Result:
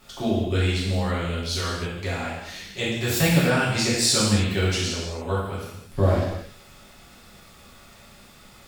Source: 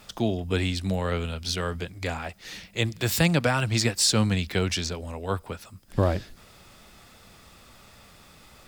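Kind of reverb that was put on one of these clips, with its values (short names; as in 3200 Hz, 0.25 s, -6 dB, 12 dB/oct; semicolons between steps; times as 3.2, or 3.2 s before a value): non-linear reverb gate 0.35 s falling, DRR -8 dB; gain -6 dB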